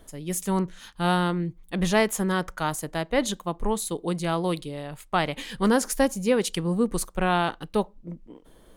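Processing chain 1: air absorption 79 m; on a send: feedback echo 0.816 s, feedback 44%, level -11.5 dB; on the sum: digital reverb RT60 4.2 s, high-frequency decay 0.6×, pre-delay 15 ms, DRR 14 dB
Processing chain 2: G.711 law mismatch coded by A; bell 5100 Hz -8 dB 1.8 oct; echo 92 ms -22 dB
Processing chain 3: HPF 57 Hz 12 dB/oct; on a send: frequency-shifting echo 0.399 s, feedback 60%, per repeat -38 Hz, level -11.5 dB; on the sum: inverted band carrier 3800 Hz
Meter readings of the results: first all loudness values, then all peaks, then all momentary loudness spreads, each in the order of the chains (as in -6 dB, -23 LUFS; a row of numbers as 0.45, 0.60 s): -26.5, -27.5, -23.0 LUFS; -9.5, -10.5, -6.5 dBFS; 10, 10, 9 LU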